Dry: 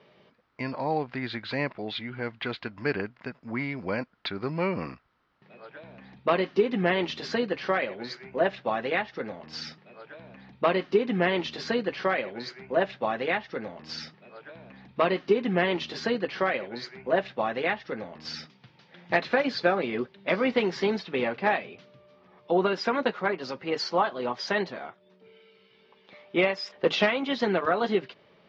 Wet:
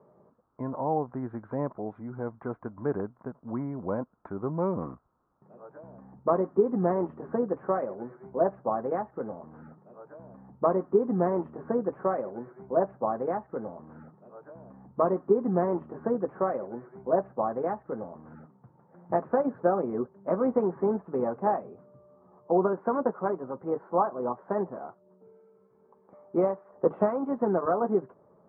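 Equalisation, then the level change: steep low-pass 1.2 kHz 36 dB/octave; 0.0 dB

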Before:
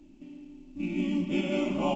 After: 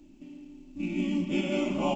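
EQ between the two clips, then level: treble shelf 6.8 kHz +6.5 dB; 0.0 dB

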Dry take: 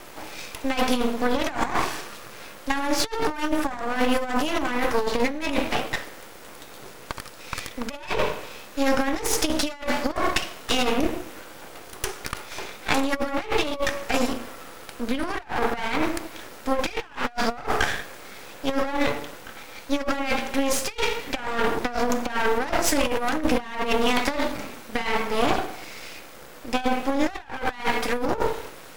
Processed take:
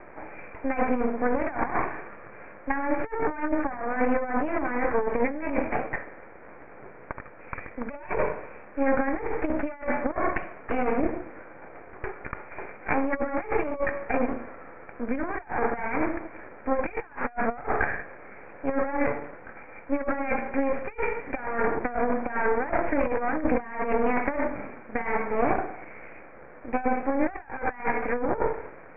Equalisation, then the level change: rippled Chebyshev low-pass 2.4 kHz, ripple 3 dB; distance through air 160 m; 0.0 dB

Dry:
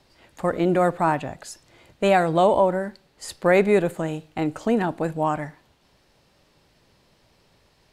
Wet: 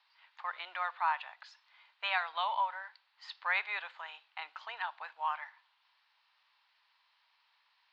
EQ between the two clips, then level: Chebyshev high-pass 930 Hz, order 4; steep low-pass 4.5 kHz 36 dB/octave; dynamic bell 3.4 kHz, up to +4 dB, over -48 dBFS, Q 1.8; -6.0 dB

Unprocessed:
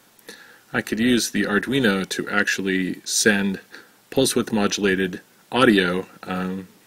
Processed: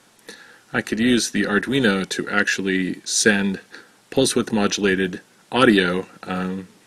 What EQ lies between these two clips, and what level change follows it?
low-pass 11 kHz 24 dB/octave; +1.0 dB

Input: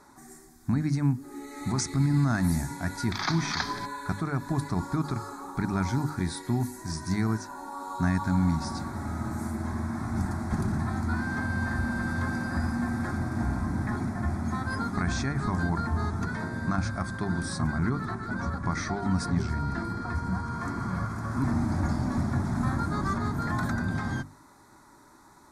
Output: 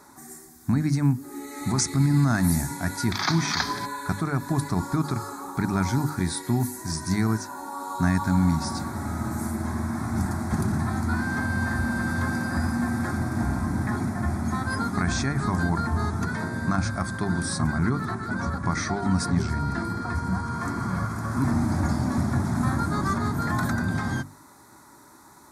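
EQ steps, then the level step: high-pass 61 Hz; treble shelf 10 kHz +11.5 dB; +3.5 dB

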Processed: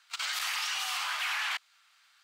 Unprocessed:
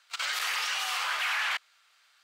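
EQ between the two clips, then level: high-pass 720 Hz 24 dB/octave; dynamic bell 1.6 kHz, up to -4 dB, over -42 dBFS, Q 0.89; 0.0 dB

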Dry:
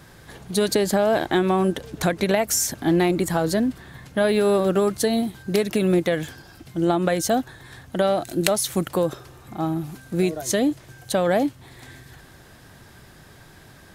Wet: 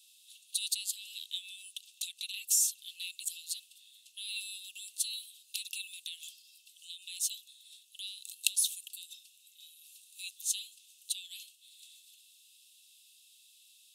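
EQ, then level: rippled Chebyshev high-pass 2.6 kHz, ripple 6 dB; -2.0 dB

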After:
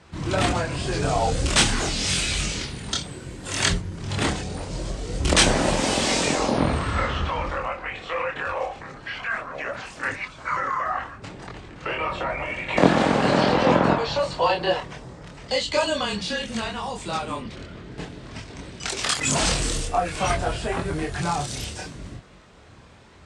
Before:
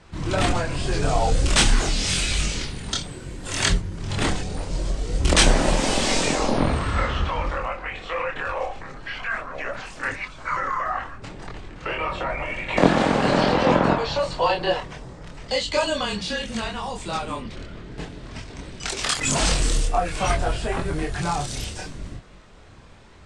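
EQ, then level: high-pass 59 Hz; 0.0 dB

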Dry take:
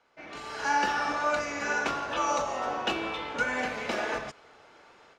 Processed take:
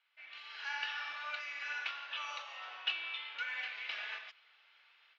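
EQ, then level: ladder band-pass 3.8 kHz, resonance 30%; distance through air 310 m; +13.0 dB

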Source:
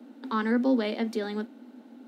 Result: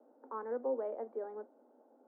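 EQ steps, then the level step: ladder high-pass 410 Hz, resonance 40%; low-pass 1.1 kHz 24 dB/octave; -1.5 dB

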